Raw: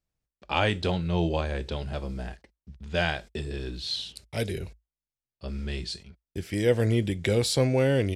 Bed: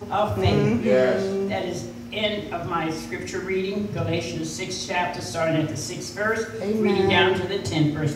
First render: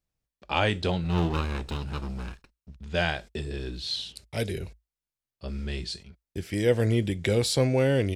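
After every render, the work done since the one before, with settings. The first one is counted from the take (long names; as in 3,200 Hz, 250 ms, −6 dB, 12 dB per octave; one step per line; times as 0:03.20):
0:01.04–0:02.77: lower of the sound and its delayed copy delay 0.74 ms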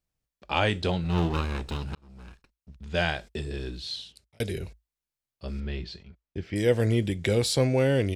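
0:01.95–0:02.89: fade in
0:03.65–0:04.40: fade out
0:05.60–0:06.56: high-frequency loss of the air 200 metres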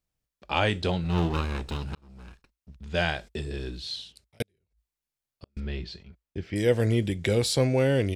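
0:04.42–0:05.57: gate with flip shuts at −29 dBFS, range −42 dB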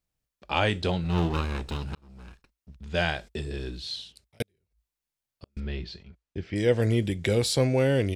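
0:05.60–0:06.82: low-pass filter 7,400 Hz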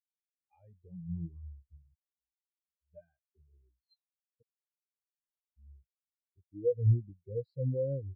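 brickwall limiter −17 dBFS, peak gain reduction 6.5 dB
every bin expanded away from the loudest bin 4 to 1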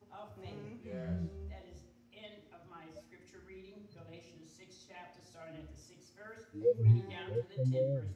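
mix in bed −28 dB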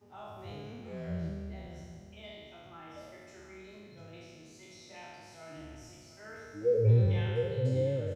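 peak hold with a decay on every bin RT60 1.90 s
single-tap delay 701 ms −14 dB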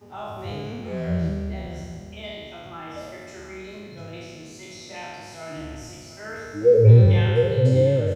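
level +12 dB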